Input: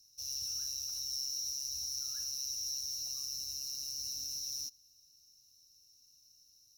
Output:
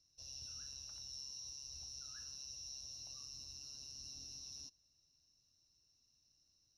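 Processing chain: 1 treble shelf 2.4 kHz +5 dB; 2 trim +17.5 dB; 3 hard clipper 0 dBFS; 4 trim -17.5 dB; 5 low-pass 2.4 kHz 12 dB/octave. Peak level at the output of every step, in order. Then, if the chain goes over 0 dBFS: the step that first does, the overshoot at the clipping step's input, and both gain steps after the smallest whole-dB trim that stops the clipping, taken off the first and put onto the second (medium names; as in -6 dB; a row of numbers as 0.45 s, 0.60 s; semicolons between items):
-22.5 dBFS, -5.0 dBFS, -5.0 dBFS, -22.5 dBFS, -37.5 dBFS; nothing clips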